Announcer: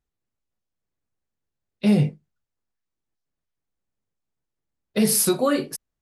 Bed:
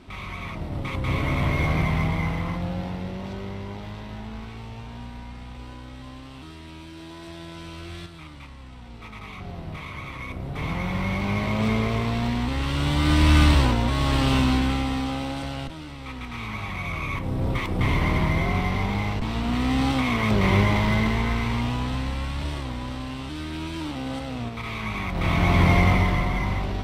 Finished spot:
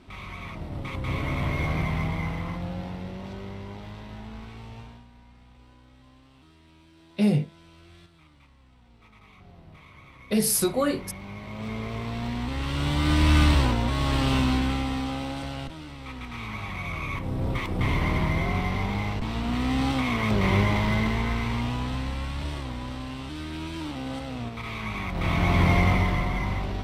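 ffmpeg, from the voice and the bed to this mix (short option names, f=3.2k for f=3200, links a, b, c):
-filter_complex "[0:a]adelay=5350,volume=-3.5dB[a];[1:a]volume=7.5dB,afade=t=out:st=4.8:d=0.24:silence=0.316228,afade=t=in:st=11.43:d=1.42:silence=0.266073[b];[a][b]amix=inputs=2:normalize=0"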